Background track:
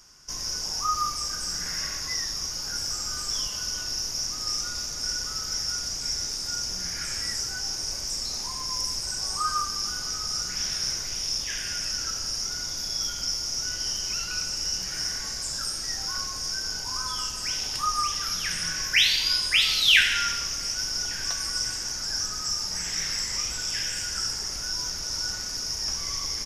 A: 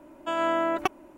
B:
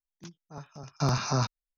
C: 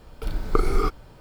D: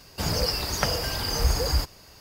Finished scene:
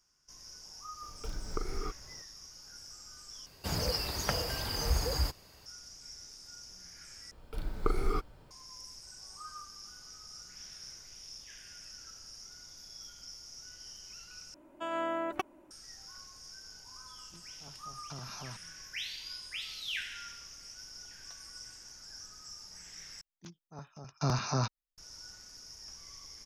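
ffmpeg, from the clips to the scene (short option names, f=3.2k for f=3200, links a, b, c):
-filter_complex "[3:a]asplit=2[a][b];[2:a]asplit=2[c][d];[0:a]volume=-19.5dB[e];[a]acompressor=threshold=-29dB:ratio=2:attack=20:release=438:knee=1:detection=peak[f];[c]acompressor=threshold=-30dB:ratio=6:attack=3.2:release=140:knee=1:detection=peak[g];[e]asplit=5[h][i][j][k][l];[h]atrim=end=3.464[m];[4:a]atrim=end=2.2,asetpts=PTS-STARTPTS,volume=-7dB[n];[i]atrim=start=5.656:end=7.314[o];[b]atrim=end=1.2,asetpts=PTS-STARTPTS,volume=-9dB[p];[j]atrim=start=8.506:end=14.544[q];[1:a]atrim=end=1.17,asetpts=PTS-STARTPTS,volume=-8.5dB[r];[k]atrim=start=15.706:end=23.214[s];[d]atrim=end=1.77,asetpts=PTS-STARTPTS,volume=-4dB[t];[l]atrim=start=24.976[u];[f]atrim=end=1.2,asetpts=PTS-STARTPTS,volume=-8dB,afade=t=in:d=0.004:c=hsin,afade=t=out:st=1.196:d=0.004:c=hsin,adelay=1020[v];[g]atrim=end=1.77,asetpts=PTS-STARTPTS,volume=-11.5dB,afade=t=in:d=0.004:c=hsin,afade=t=out:st=1.766:d=0.004:c=hsin,adelay=17100[w];[m][n]acrossfade=d=0.004:c1=hsin:c2=hsin[x];[x][o]acrossfade=d=0.004:c1=hsin:c2=hsin[y];[y][p]acrossfade=d=0.004:c1=hsin:c2=hsin[z];[z][q]acrossfade=d=0.004:c1=hsin:c2=hsin[aa];[aa][r]acrossfade=d=0.004:c1=hsin:c2=hsin[ab];[ab][s]acrossfade=d=0.004:c1=hsin:c2=hsin[ac];[ac][t]acrossfade=d=0.004:c1=hsin:c2=hsin[ad];[ad][u]acrossfade=d=0.004:c1=hsin:c2=hsin[ae];[ae][v][w]amix=inputs=3:normalize=0"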